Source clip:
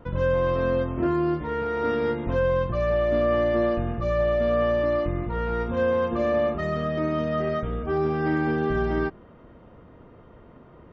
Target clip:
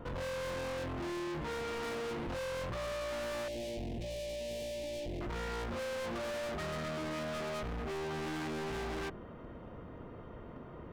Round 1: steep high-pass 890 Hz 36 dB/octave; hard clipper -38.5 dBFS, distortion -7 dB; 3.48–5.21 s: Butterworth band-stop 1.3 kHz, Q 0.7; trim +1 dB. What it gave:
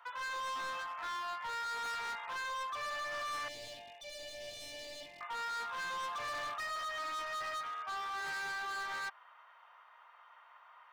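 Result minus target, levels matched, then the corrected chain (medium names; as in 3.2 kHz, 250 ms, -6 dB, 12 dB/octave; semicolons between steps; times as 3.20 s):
1 kHz band +5.5 dB
hard clipper -38.5 dBFS, distortion -4 dB; 3.48–5.21 s: Butterworth band-stop 1.3 kHz, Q 0.7; trim +1 dB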